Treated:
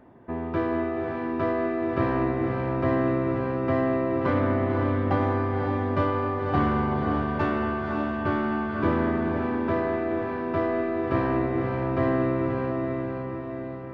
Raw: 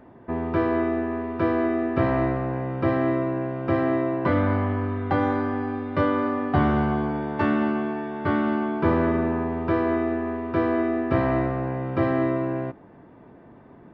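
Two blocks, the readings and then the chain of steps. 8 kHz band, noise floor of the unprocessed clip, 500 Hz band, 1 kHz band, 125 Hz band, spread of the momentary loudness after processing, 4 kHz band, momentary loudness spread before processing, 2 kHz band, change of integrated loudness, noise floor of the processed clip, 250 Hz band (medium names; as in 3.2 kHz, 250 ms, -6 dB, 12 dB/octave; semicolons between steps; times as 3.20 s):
no reading, -49 dBFS, -1.0 dB, -1.0 dB, -0.5 dB, 5 LU, -1.0 dB, 5 LU, -1.5 dB, -1.5 dB, -33 dBFS, -2.0 dB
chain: tracing distortion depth 0.032 ms; echo that smears into a reverb 537 ms, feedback 56%, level -4 dB; trim -3.5 dB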